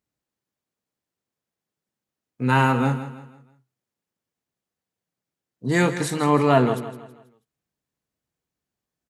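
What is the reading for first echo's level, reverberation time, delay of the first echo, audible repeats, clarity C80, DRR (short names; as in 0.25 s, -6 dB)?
-12.5 dB, none, 0.162 s, 3, none, none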